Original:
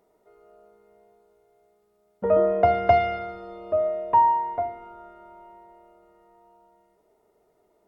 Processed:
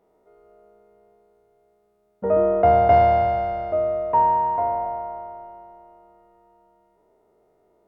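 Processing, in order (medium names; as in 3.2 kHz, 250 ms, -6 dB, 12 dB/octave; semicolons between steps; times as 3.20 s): spectral sustain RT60 2.66 s; treble shelf 2.2 kHz -8.5 dB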